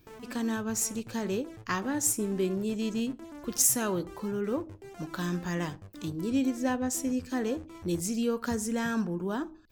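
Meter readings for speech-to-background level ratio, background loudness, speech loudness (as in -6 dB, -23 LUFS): 17.0 dB, -48.0 LUFS, -31.0 LUFS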